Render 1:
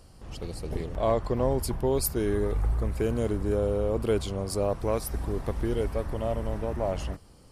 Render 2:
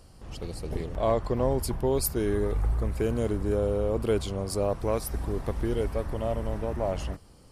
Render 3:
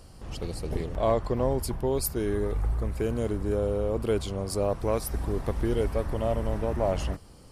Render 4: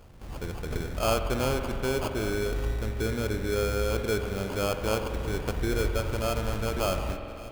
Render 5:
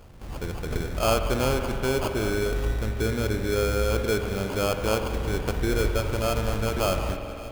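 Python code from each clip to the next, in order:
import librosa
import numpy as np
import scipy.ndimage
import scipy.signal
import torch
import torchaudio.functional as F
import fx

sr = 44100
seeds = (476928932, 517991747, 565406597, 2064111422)

y1 = x
y2 = fx.rider(y1, sr, range_db=4, speed_s=2.0)
y3 = fx.sample_hold(y2, sr, seeds[0], rate_hz=1900.0, jitter_pct=0)
y3 = y3 + 10.0 ** (-17.0 / 20.0) * np.pad(y3, (int(1154 * sr / 1000.0), 0))[:len(y3)]
y3 = fx.rev_spring(y3, sr, rt60_s=3.0, pass_ms=(46,), chirp_ms=45, drr_db=6.5)
y3 = F.gain(torch.from_numpy(y3), -2.0).numpy()
y4 = fx.echo_feedback(y3, sr, ms=202, feedback_pct=43, wet_db=-16)
y4 = F.gain(torch.from_numpy(y4), 3.0).numpy()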